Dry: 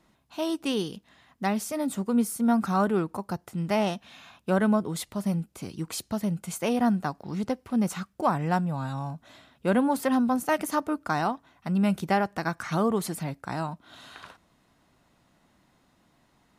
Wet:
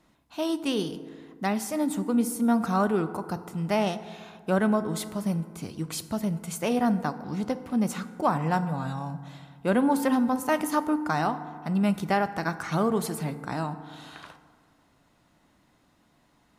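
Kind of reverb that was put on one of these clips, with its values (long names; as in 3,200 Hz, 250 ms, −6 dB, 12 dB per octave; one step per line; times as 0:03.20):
feedback delay network reverb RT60 2 s, low-frequency decay 1.05×, high-frequency decay 0.4×, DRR 11 dB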